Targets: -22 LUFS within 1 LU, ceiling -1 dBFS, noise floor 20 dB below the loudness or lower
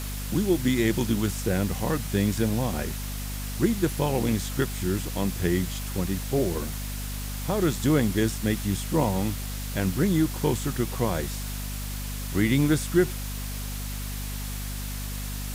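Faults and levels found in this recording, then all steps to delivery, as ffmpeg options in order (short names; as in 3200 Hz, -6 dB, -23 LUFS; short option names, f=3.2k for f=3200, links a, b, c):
hum 50 Hz; harmonics up to 250 Hz; hum level -31 dBFS; noise floor -33 dBFS; noise floor target -47 dBFS; loudness -27.0 LUFS; peak -9.5 dBFS; loudness target -22.0 LUFS
-> -af "bandreject=f=50:t=h:w=6,bandreject=f=100:t=h:w=6,bandreject=f=150:t=h:w=6,bandreject=f=200:t=h:w=6,bandreject=f=250:t=h:w=6"
-af "afftdn=nr=14:nf=-33"
-af "volume=5dB"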